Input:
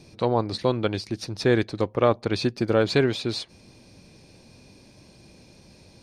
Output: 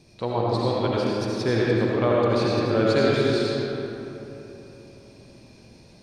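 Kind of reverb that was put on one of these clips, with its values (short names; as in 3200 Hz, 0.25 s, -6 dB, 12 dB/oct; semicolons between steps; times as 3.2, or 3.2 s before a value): digital reverb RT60 3.4 s, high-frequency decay 0.5×, pre-delay 40 ms, DRR -5.5 dB; gain -5 dB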